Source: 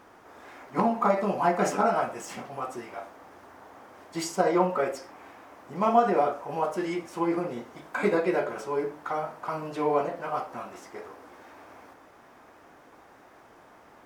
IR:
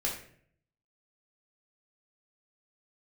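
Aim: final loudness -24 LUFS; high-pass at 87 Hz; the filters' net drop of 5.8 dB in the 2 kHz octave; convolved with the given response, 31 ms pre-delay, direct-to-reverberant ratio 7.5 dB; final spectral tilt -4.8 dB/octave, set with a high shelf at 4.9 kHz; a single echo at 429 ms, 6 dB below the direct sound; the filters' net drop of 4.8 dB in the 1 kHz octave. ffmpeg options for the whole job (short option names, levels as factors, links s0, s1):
-filter_complex "[0:a]highpass=87,equalizer=f=1000:t=o:g=-6,equalizer=f=2000:t=o:g=-6,highshelf=f=4900:g=4.5,aecho=1:1:429:0.501,asplit=2[s0][s1];[1:a]atrim=start_sample=2205,adelay=31[s2];[s1][s2]afir=irnorm=-1:irlink=0,volume=0.237[s3];[s0][s3]amix=inputs=2:normalize=0,volume=1.68"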